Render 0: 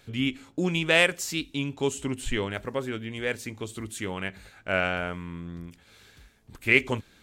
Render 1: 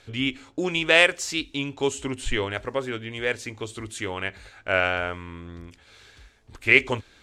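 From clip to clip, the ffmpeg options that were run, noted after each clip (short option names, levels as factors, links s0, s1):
-af "lowpass=7800,equalizer=f=180:t=o:w=0.93:g=-10.5,volume=1.58"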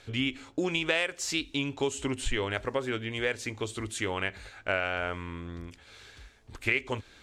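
-af "acompressor=threshold=0.0562:ratio=5"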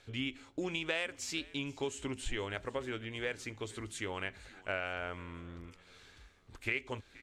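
-filter_complex "[0:a]asplit=4[s0][s1][s2][s3];[s1]adelay=475,afreqshift=-82,volume=0.0841[s4];[s2]adelay=950,afreqshift=-164,volume=0.0372[s5];[s3]adelay=1425,afreqshift=-246,volume=0.0162[s6];[s0][s4][s5][s6]amix=inputs=4:normalize=0,volume=0.422"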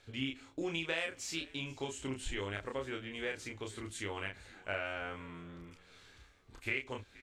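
-filter_complex "[0:a]asplit=2[s0][s1];[s1]adelay=30,volume=0.668[s2];[s0][s2]amix=inputs=2:normalize=0,volume=0.75"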